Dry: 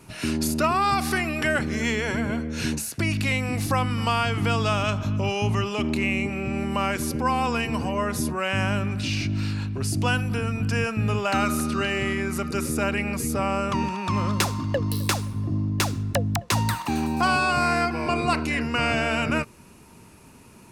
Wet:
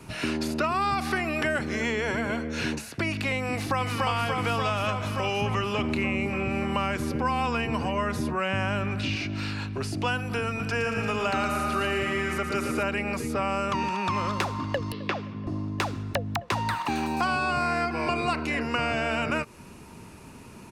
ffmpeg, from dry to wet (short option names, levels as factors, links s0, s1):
-filter_complex "[0:a]asplit=2[s0][s1];[s1]afade=t=in:st=3.51:d=0.01,afade=t=out:st=4.04:d=0.01,aecho=0:1:290|580|870|1160|1450|1740|2030|2320|2610|2900|3190|3480:0.891251|0.668438|0.501329|0.375996|0.281997|0.211498|0.158624|0.118968|0.0892257|0.0669193|0.0501895|0.0376421[s2];[s0][s2]amix=inputs=2:normalize=0,asettb=1/sr,asplit=3[s3][s4][s5];[s3]atrim=end=5.414[s6];[s4]atrim=start=5.41:end=9.16,asetpts=PTS-STARTPTS,afade=t=in:d=0.004:c=qsin,afade=t=out:st=3.746:d=0.004:c=qsin,bass=f=250:g=10,treble=f=4000:g=-5[s7];[s5]atrim=start=9.156[s8];[s6][s7]acrossfade=d=0.004:c1=hsin:c2=qsin[s9];[s9][s8]acrossfade=d=0.004:c1=qsin:c2=hsin,asettb=1/sr,asplit=3[s10][s11][s12];[s10]atrim=end=10.484[s13];[s11]atrim=start=10.48:end=12.83,asetpts=PTS-STARTPTS,afade=t=in:d=0.004:c=qsin,afade=t=out:st=2.346:d=0.004:c=qsin,aecho=1:1:114|228|342|456|570|684|798|912:0.447|0.264|0.155|0.0917|0.0541|0.0319|0.0188|0.0111,atrim=end_sample=103635[s14];[s12]atrim=start=12.826[s15];[s13][s14]acrossfade=d=0.004:c1=hsin:c2=qsin[s16];[s16][s15]acrossfade=d=0.004:c1=qsin:c2=hsin,asettb=1/sr,asplit=3[s17][s18][s19];[s17]atrim=end=14.924[s20];[s18]atrim=start=14.92:end=15.47,asetpts=PTS-STARTPTS,afade=t=in:d=0.004:c=qsin,afade=t=out:st=0.546:d=0.004:c=qsin,highpass=190,equalizer=f=280:t=q:w=4:g=-4,equalizer=f=900:t=q:w=4:g=-8,equalizer=f=1400:t=q:w=4:g=-3,equalizer=f=4000:t=q:w=4:g=-7,lowpass=f=4000:w=0.5412,lowpass=f=4000:w=1.3066[s21];[s19]atrim=start=15.466[s22];[s20][s21]acrossfade=d=0.004:c1=hsin:c2=qsin[s23];[s23][s22]acrossfade=d=0.004:c1=qsin:c2=hsin,highshelf=f=7400:g=-7,acrossover=split=360|1300|3900[s24][s25][s26][s27];[s24]acompressor=threshold=0.0126:ratio=4[s28];[s25]acompressor=threshold=0.0224:ratio=4[s29];[s26]acompressor=threshold=0.0158:ratio=4[s30];[s27]acompressor=threshold=0.00355:ratio=4[s31];[s28][s29][s30][s31]amix=inputs=4:normalize=0,volume=1.58"